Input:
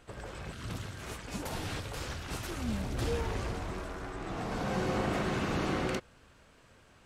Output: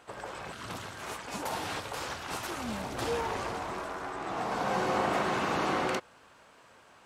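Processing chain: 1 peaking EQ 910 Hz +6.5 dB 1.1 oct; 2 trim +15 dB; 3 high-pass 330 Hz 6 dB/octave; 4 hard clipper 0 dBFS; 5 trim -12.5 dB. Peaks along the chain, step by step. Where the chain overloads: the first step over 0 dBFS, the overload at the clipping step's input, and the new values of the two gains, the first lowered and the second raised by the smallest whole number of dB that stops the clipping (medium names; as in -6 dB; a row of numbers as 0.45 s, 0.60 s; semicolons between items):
-19.0 dBFS, -4.0 dBFS, -4.5 dBFS, -4.5 dBFS, -17.0 dBFS; nothing clips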